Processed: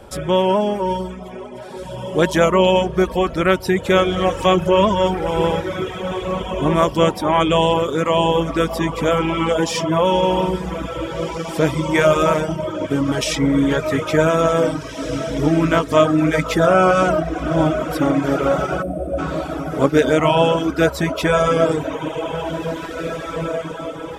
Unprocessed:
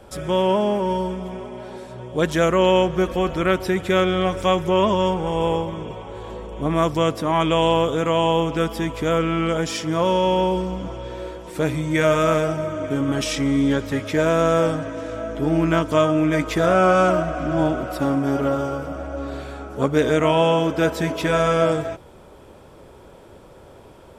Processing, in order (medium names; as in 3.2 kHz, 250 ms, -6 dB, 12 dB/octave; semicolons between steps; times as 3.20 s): echo that smears into a reverb 1949 ms, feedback 43%, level -8 dB; time-frequency box 18.83–19.18 s, 750–8000 Hz -14 dB; reverb removal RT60 1 s; trim +4.5 dB